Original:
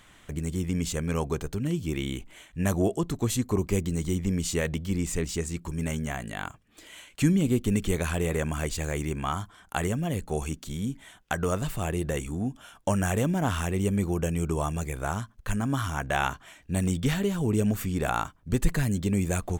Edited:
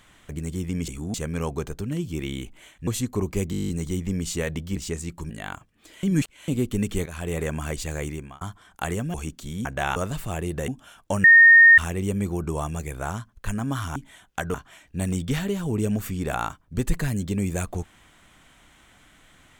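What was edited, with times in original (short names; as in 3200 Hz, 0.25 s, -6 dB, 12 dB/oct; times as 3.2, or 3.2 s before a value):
2.61–3.23 cut
3.87 stutter 0.02 s, 10 plays
4.94–5.23 cut
5.77–6.23 cut
6.96–7.41 reverse
7.99–8.28 fade in, from -13.5 dB
8.98–9.34 fade out
10.07–10.38 cut
10.89–11.47 swap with 15.98–16.29
12.19–12.45 move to 0.88
13.01–13.55 bleep 1840 Hz -8 dBFS
14.21–14.46 cut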